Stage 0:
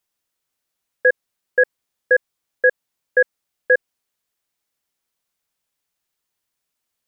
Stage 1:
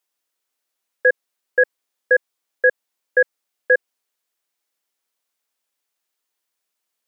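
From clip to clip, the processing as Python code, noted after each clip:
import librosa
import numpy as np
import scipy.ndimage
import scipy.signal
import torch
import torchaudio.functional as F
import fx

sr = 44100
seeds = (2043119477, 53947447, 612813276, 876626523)

y = scipy.signal.sosfilt(scipy.signal.butter(2, 290.0, 'highpass', fs=sr, output='sos'), x)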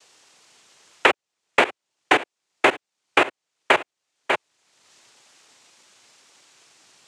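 y = fx.noise_vocoder(x, sr, seeds[0], bands=4)
y = y + 10.0 ** (-17.0 / 20.0) * np.pad(y, (int(593 * sr / 1000.0), 0))[:len(y)]
y = fx.band_squash(y, sr, depth_pct=100)
y = y * librosa.db_to_amplitude(-1.0)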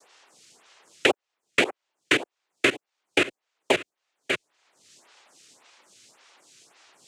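y = fx.stagger_phaser(x, sr, hz=1.8)
y = y * librosa.db_to_amplitude(3.0)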